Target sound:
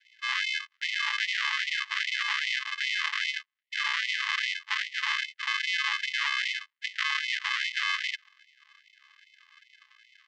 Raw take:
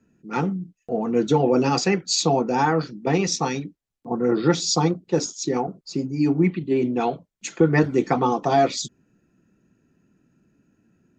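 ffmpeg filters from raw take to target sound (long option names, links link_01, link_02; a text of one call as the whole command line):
ffmpeg -i in.wav -af "acompressor=threshold=-20dB:ratio=6,aresample=16000,acrusher=samples=37:mix=1:aa=0.000001,aresample=44100,highpass=140,equalizer=frequency=200:width_type=q:width=4:gain=8,equalizer=frequency=770:width_type=q:width=4:gain=-3,equalizer=frequency=1200:width_type=q:width=4:gain=-3,equalizer=frequency=1800:width_type=q:width=4:gain=10,equalizer=frequency=2800:width_type=q:width=4:gain=6,lowpass=frequency=4600:width=0.5412,lowpass=frequency=4600:width=1.3066,asetrate=48000,aresample=44100,alimiter=level_in=19.5dB:limit=-1dB:release=50:level=0:latency=1,afftfilt=real='re*gte(b*sr/1024,820*pow(1900/820,0.5+0.5*sin(2*PI*2.5*pts/sr)))':imag='im*gte(b*sr/1024,820*pow(1900/820,0.5+0.5*sin(2*PI*2.5*pts/sr)))':win_size=1024:overlap=0.75,volume=-7dB" out.wav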